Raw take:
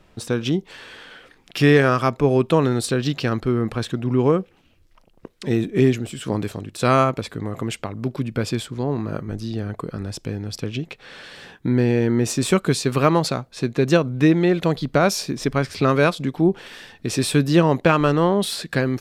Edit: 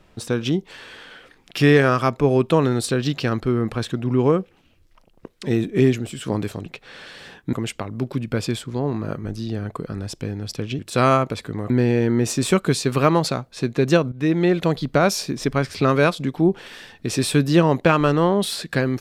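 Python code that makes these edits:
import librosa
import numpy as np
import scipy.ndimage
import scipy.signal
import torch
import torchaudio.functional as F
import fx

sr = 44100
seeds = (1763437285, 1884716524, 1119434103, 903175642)

y = fx.edit(x, sr, fx.swap(start_s=6.66, length_s=0.91, other_s=10.83, other_length_s=0.87),
    fx.fade_in_from(start_s=14.12, length_s=0.32, floor_db=-14.0), tone=tone)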